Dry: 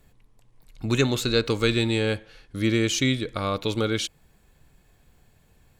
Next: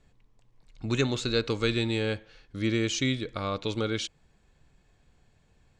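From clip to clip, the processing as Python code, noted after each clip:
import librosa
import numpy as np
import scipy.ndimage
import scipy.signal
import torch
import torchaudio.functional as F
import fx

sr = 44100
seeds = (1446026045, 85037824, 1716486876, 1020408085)

y = scipy.signal.sosfilt(scipy.signal.butter(4, 7600.0, 'lowpass', fs=sr, output='sos'), x)
y = y * 10.0 ** (-4.5 / 20.0)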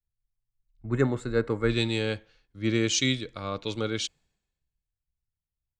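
y = fx.spec_box(x, sr, start_s=0.82, length_s=0.88, low_hz=2200.0, high_hz=7000.0, gain_db=-13)
y = fx.band_widen(y, sr, depth_pct=100)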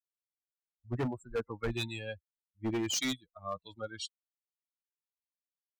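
y = fx.bin_expand(x, sr, power=3.0)
y = np.clip(y, -10.0 ** (-28.5 / 20.0), 10.0 ** (-28.5 / 20.0))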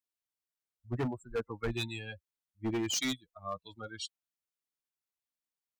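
y = fx.notch(x, sr, hz=550.0, q=12.0)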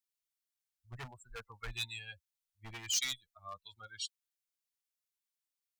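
y = fx.tone_stack(x, sr, knobs='10-0-10')
y = y * 10.0 ** (2.0 / 20.0)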